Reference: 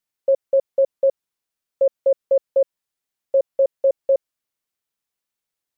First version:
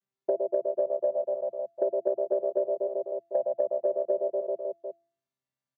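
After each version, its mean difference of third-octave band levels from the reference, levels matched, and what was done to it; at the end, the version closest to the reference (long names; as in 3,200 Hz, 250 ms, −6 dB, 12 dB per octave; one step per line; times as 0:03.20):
4.5 dB: channel vocoder with a chord as carrier bare fifth, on C3
on a send: reverse bouncing-ball delay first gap 110 ms, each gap 1.15×, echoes 5
on the sum: downward compressor 5 to 1, threshold −25 dBFS, peak gain reduction 13 dB
hum removal 338.4 Hz, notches 2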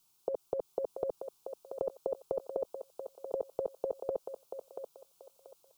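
9.0 dB: parametric band 540 Hz −5 dB 1.1 octaves
brickwall limiter −25 dBFS, peak gain reduction 9.5 dB
phaser with its sweep stopped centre 370 Hz, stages 8
on a send: feedback echo with a high-pass in the loop 684 ms, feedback 35%, high-pass 540 Hz, level −5.5 dB
on the sum: level +15 dB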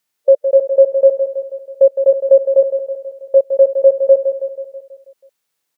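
1.0 dB: high-pass filter 220 Hz 6 dB per octave
harmonic and percussive parts rebalanced harmonic +8 dB
in parallel at +0.5 dB: downward compressor, threshold −17 dBFS, peak gain reduction 10 dB
on the sum: repeating echo 162 ms, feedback 57%, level −8.5 dB
level −1 dB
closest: third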